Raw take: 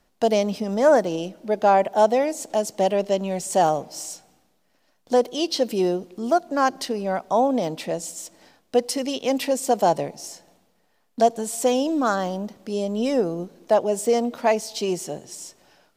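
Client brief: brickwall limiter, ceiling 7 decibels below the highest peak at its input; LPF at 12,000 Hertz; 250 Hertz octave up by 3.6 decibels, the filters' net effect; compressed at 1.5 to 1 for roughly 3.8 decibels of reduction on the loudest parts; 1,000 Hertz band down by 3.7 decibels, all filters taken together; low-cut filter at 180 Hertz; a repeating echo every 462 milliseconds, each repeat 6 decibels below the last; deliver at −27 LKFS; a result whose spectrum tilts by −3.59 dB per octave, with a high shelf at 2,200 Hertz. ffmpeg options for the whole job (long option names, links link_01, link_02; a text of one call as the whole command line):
ffmpeg -i in.wav -af "highpass=180,lowpass=12000,equalizer=frequency=250:width_type=o:gain=6,equalizer=frequency=1000:width_type=o:gain=-7.5,highshelf=frequency=2200:gain=6.5,acompressor=threshold=-24dB:ratio=1.5,alimiter=limit=-17dB:level=0:latency=1,aecho=1:1:462|924|1386|1848|2310|2772:0.501|0.251|0.125|0.0626|0.0313|0.0157,volume=-0.5dB" out.wav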